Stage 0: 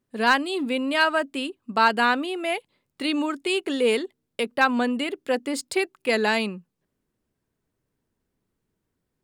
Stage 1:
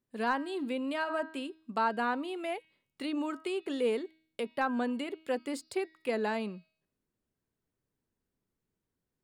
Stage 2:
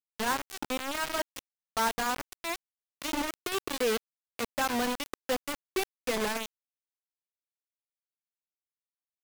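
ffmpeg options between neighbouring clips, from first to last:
ffmpeg -i in.wav -filter_complex "[0:a]bandreject=frequency=318.2:width_type=h:width=4,bandreject=frequency=636.4:width_type=h:width=4,bandreject=frequency=954.6:width_type=h:width=4,bandreject=frequency=1272.8:width_type=h:width=4,bandreject=frequency=1591:width_type=h:width=4,bandreject=frequency=1909.2:width_type=h:width=4,bandreject=frequency=2227.4:width_type=h:width=4,bandreject=frequency=2545.6:width_type=h:width=4,bandreject=frequency=2863.8:width_type=h:width=4,bandreject=frequency=3182:width_type=h:width=4,bandreject=frequency=3500.2:width_type=h:width=4,bandreject=frequency=3818.4:width_type=h:width=4,bandreject=frequency=4136.6:width_type=h:width=4,bandreject=frequency=4454.8:width_type=h:width=4,bandreject=frequency=4773:width_type=h:width=4,bandreject=frequency=5091.2:width_type=h:width=4,bandreject=frequency=5409.4:width_type=h:width=4,bandreject=frequency=5727.6:width_type=h:width=4,acrossover=split=1400[link_01][link_02];[link_02]acompressor=threshold=-35dB:ratio=6[link_03];[link_01][link_03]amix=inputs=2:normalize=0,volume=-8dB" out.wav
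ffmpeg -i in.wav -af "acrusher=bits=4:mix=0:aa=0.000001" out.wav

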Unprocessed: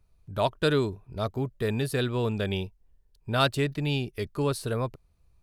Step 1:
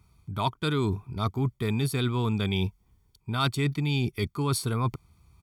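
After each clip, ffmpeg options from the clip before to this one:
ffmpeg -i in.wav -af "highpass=84,aecho=1:1:0.9:0.75,areverse,acompressor=threshold=-33dB:ratio=5,areverse,volume=8.5dB" out.wav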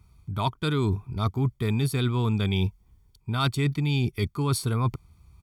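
ffmpeg -i in.wav -af "lowshelf=frequency=88:gain=8.5" out.wav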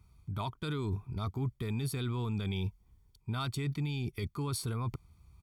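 ffmpeg -i in.wav -af "alimiter=limit=-21.5dB:level=0:latency=1:release=20,volume=-5dB" out.wav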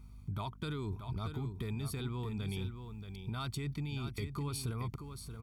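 ffmpeg -i in.wav -af "acompressor=threshold=-40dB:ratio=4,aecho=1:1:629:0.376,aeval=exprs='val(0)+0.00158*(sin(2*PI*50*n/s)+sin(2*PI*2*50*n/s)/2+sin(2*PI*3*50*n/s)/3+sin(2*PI*4*50*n/s)/4+sin(2*PI*5*50*n/s)/5)':channel_layout=same,volume=3.5dB" out.wav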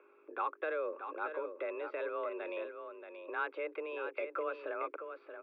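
ffmpeg -i in.wav -af "highpass=frequency=280:width_type=q:width=0.5412,highpass=frequency=280:width_type=q:width=1.307,lowpass=frequency=2300:width_type=q:width=0.5176,lowpass=frequency=2300:width_type=q:width=0.7071,lowpass=frequency=2300:width_type=q:width=1.932,afreqshift=160,volume=7.5dB" out.wav

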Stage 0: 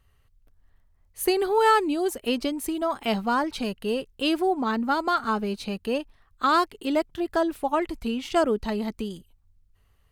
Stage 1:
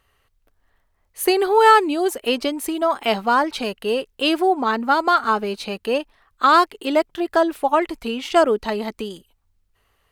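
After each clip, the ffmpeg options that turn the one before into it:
ffmpeg -i in.wav -af "bass=frequency=250:gain=-13,treble=frequency=4000:gain=-3,volume=7.5dB" out.wav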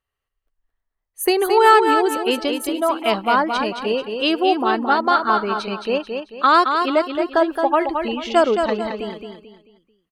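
ffmpeg -i in.wav -filter_complex "[0:a]afftdn=noise_reduction=19:noise_floor=-40,asplit=2[link_01][link_02];[link_02]aecho=0:1:220|440|660|880:0.501|0.175|0.0614|0.0215[link_03];[link_01][link_03]amix=inputs=2:normalize=0" out.wav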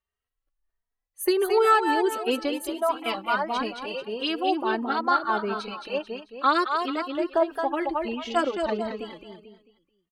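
ffmpeg -i in.wav -filter_complex "[0:a]asplit=2[link_01][link_02];[link_02]adelay=2.9,afreqshift=1.5[link_03];[link_01][link_03]amix=inputs=2:normalize=1,volume=-4dB" out.wav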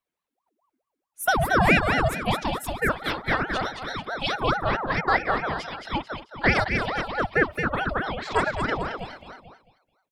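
ffmpeg -i in.wav -af "aeval=exprs='val(0)*sin(2*PI*700*n/s+700*0.65/4.6*sin(2*PI*4.6*n/s))':channel_layout=same,volume=3.5dB" out.wav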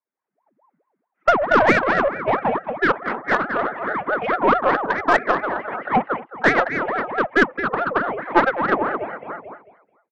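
ffmpeg -i in.wav -af "highpass=frequency=310:width_type=q:width=0.5412,highpass=frequency=310:width_type=q:width=1.307,lowpass=frequency=2100:width_type=q:width=0.5176,lowpass=frequency=2100:width_type=q:width=0.7071,lowpass=frequency=2100:width_type=q:width=1.932,afreqshift=-88,aeval=exprs='0.355*(cos(1*acos(clip(val(0)/0.355,-1,1)))-cos(1*PI/2))+0.0708*(cos(2*acos(clip(val(0)/0.355,-1,1)))-cos(2*PI/2))+0.0158*(cos(7*acos(clip(val(0)/0.355,-1,1)))-cos(7*PI/2))+0.00224*(cos(8*acos(clip(val(0)/0.355,-1,1)))-cos(8*PI/2))':channel_layout=same,dynaudnorm=framelen=140:gausssize=5:maxgain=17dB,volume=-1dB" out.wav

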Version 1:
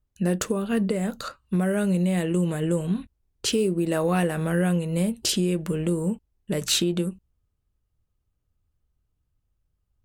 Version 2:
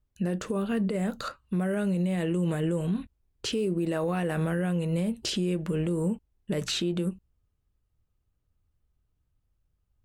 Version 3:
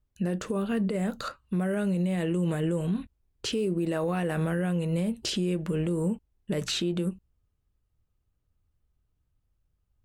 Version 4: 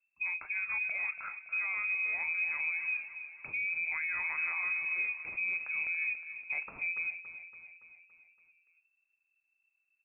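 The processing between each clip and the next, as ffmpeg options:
ffmpeg -i in.wav -filter_complex "[0:a]acrossover=split=7500[link_01][link_02];[link_02]acompressor=threshold=-43dB:ratio=4:attack=1:release=60[link_03];[link_01][link_03]amix=inputs=2:normalize=0,bass=frequency=250:gain=0,treble=frequency=4000:gain=-4,alimiter=limit=-20.5dB:level=0:latency=1:release=65" out.wav
ffmpeg -i in.wav -af anull out.wav
ffmpeg -i in.wav -filter_complex "[0:a]asplit=2[link_01][link_02];[link_02]aecho=0:1:283|566|849|1132|1415|1698:0.266|0.152|0.0864|0.0493|0.0281|0.016[link_03];[link_01][link_03]amix=inputs=2:normalize=0,lowpass=frequency=2300:width_type=q:width=0.5098,lowpass=frequency=2300:width_type=q:width=0.6013,lowpass=frequency=2300:width_type=q:width=0.9,lowpass=frequency=2300:width_type=q:width=2.563,afreqshift=-2700,volume=-7dB" out.wav

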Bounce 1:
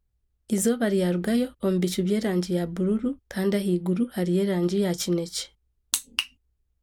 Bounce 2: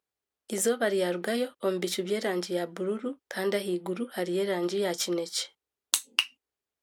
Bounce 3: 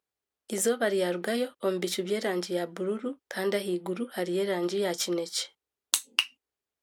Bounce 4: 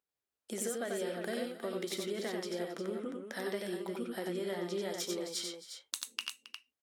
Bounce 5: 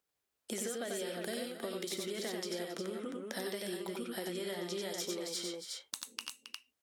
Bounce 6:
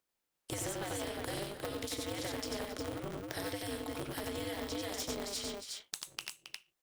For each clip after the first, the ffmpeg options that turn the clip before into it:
ffmpeg -i in.wav -af "highpass=450,highshelf=frequency=5800:gain=-4.5,volume=2dB" out.wav
ffmpeg -i in.wav -af anull out.wav
ffmpeg -i in.wav -filter_complex "[0:a]acompressor=threshold=-29dB:ratio=6,asplit=2[link_01][link_02];[link_02]aecho=0:1:78|91|270|356:0.158|0.668|0.15|0.376[link_03];[link_01][link_03]amix=inputs=2:normalize=0,volume=-6dB" out.wav
ffmpeg -i in.wav -filter_complex "[0:a]acrossover=split=930|2500|5100[link_01][link_02][link_03][link_04];[link_01]acompressor=threshold=-45dB:ratio=4[link_05];[link_02]acompressor=threshold=-59dB:ratio=4[link_06];[link_03]acompressor=threshold=-53dB:ratio=4[link_07];[link_04]acompressor=threshold=-49dB:ratio=4[link_08];[link_05][link_06][link_07][link_08]amix=inputs=4:normalize=0,volume=6dB" out.wav
ffmpeg -i in.wav -af "aeval=exprs='val(0)*sgn(sin(2*PI*100*n/s))':channel_layout=same" out.wav

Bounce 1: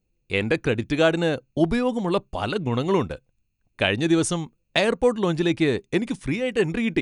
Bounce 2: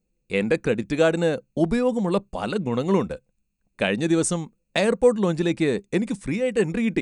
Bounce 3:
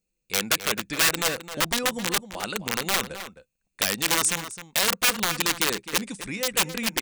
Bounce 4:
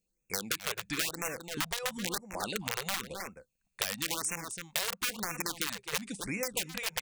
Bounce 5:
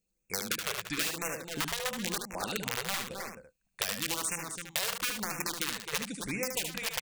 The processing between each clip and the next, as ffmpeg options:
ffmpeg -i in.wav -af "equalizer=frequency=100:width_type=o:width=0.33:gain=-10,equalizer=frequency=200:width_type=o:width=0.33:gain=8,equalizer=frequency=500:width_type=o:width=0.33:gain=5,equalizer=frequency=3150:width_type=o:width=0.33:gain=-5,equalizer=frequency=8000:width_type=o:width=0.33:gain=8,volume=-2dB" out.wav
ffmpeg -i in.wav -filter_complex "[0:a]aeval=exprs='(mod(5.31*val(0)+1,2)-1)/5.31':channel_layout=same,tiltshelf=frequency=1100:gain=-6.5,asplit=2[link_01][link_02];[link_02]adelay=262.4,volume=-11dB,highshelf=frequency=4000:gain=-5.9[link_03];[link_01][link_03]amix=inputs=2:normalize=0,volume=-3.5dB" out.wav
ffmpeg -i in.wav -af "acompressor=threshold=-27dB:ratio=6,afftfilt=real='re*(1-between(b*sr/1024,240*pow(4000/240,0.5+0.5*sin(2*PI*0.98*pts/sr))/1.41,240*pow(4000/240,0.5+0.5*sin(2*PI*0.98*pts/sr))*1.41))':imag='im*(1-between(b*sr/1024,240*pow(4000/240,0.5+0.5*sin(2*PI*0.98*pts/sr))/1.41,240*pow(4000/240,0.5+0.5*sin(2*PI*0.98*pts/sr))*1.41))':win_size=1024:overlap=0.75,volume=-2dB" out.wav
ffmpeg -i in.wav -af "aecho=1:1:74:0.501" out.wav

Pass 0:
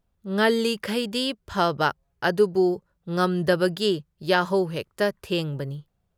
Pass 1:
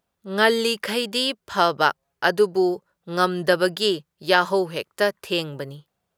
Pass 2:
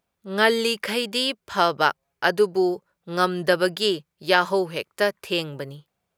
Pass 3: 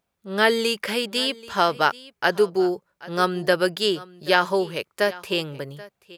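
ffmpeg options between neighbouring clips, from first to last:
ffmpeg -i in.wav -af "highpass=frequency=480:poles=1,volume=5dB" out.wav
ffmpeg -i in.wav -af "equalizer=frequency=2300:width_type=o:width=0.23:gain=5,volume=-1dB" out.wav
ffmpeg -i in.wav -af "aecho=1:1:782:0.1" out.wav

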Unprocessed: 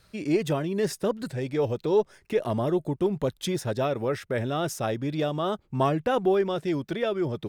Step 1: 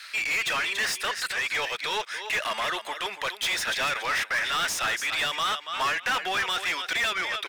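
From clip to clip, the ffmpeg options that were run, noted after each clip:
ffmpeg -i in.wav -filter_complex "[0:a]highpass=frequency=1900:width_type=q:width=1.6,aecho=1:1:283|566:0.188|0.0283,asplit=2[link_01][link_02];[link_02]highpass=frequency=720:poles=1,volume=28dB,asoftclip=type=tanh:threshold=-18dB[link_03];[link_01][link_03]amix=inputs=2:normalize=0,lowpass=frequency=4200:poles=1,volume=-6dB" out.wav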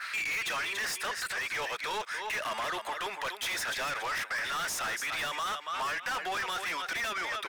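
ffmpeg -i in.wav -filter_complex "[0:a]adynamicequalizer=threshold=0.00794:dfrequency=3100:dqfactor=0.78:tfrequency=3100:tqfactor=0.78:attack=5:release=100:ratio=0.375:range=3:mode=cutabove:tftype=bell,acrossover=split=790|2200[link_01][link_02][link_03];[link_02]acompressor=mode=upward:threshold=-28dB:ratio=2.5[link_04];[link_01][link_04][link_03]amix=inputs=3:normalize=0,asoftclip=type=tanh:threshold=-29.5dB" out.wav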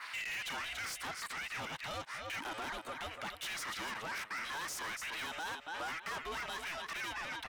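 ffmpeg -i in.wav -af "aeval=exprs='val(0)*sin(2*PI*330*n/s)':channel_layout=same,volume=-4.5dB" out.wav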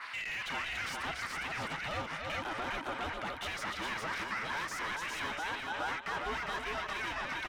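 ffmpeg -i in.wav -af "lowpass=frequency=2900:poles=1,lowshelf=frequency=190:gain=3,aecho=1:1:406:0.708,volume=3.5dB" out.wav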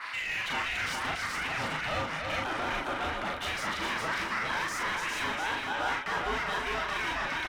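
ffmpeg -i in.wav -filter_complex "[0:a]asplit=2[link_01][link_02];[link_02]adelay=39,volume=-3dB[link_03];[link_01][link_03]amix=inputs=2:normalize=0,volume=3.5dB" out.wav

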